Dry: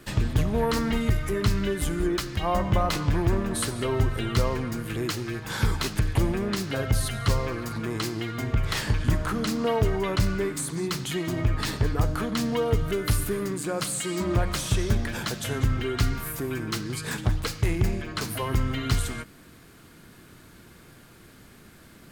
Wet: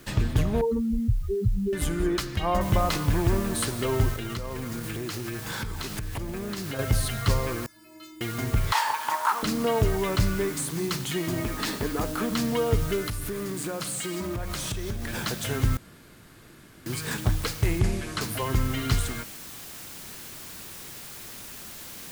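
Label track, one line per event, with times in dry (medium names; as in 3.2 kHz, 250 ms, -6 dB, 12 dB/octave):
0.610000	1.730000	spectral contrast enhancement exponent 3.5
2.610000	2.610000	noise floor step -58 dB -42 dB
4.130000	6.790000	compression 16:1, threshold -28 dBFS
7.660000	8.210000	inharmonic resonator 310 Hz, decay 0.69 s, inharmonicity 0.008
8.720000	9.430000	resonant high-pass 910 Hz, resonance Q 11
11.410000	12.310000	resonant low shelf 160 Hz -9.5 dB, Q 1.5
13.050000	15.140000	compression 10:1, threshold -27 dBFS
15.770000	16.860000	room tone
17.790000	18.210000	low-pass 11 kHz 24 dB/octave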